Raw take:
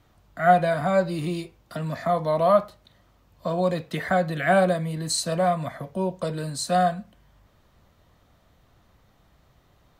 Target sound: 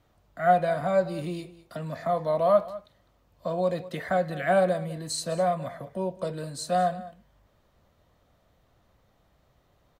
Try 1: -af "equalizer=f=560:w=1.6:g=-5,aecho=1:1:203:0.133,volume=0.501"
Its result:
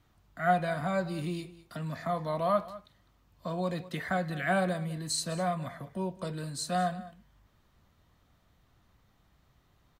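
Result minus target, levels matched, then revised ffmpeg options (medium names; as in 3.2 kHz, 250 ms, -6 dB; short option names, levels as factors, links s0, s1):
500 Hz band -3.0 dB
-af "equalizer=f=560:w=1.6:g=4.5,aecho=1:1:203:0.133,volume=0.501"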